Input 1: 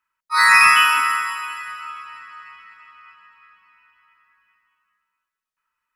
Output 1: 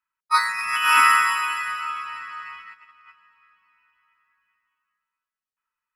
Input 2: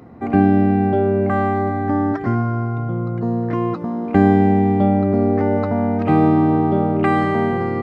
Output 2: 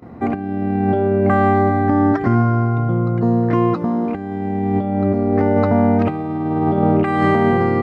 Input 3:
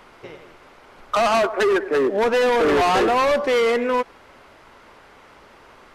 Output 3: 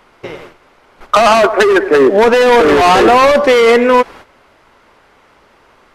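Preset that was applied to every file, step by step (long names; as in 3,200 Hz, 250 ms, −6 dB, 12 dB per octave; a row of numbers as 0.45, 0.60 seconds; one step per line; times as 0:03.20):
noise gate −44 dBFS, range −12 dB
compressor whose output falls as the input rises −18 dBFS, ratio −0.5
normalise the peak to −3 dBFS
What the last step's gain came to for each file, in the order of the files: +0.5, +2.5, +11.0 decibels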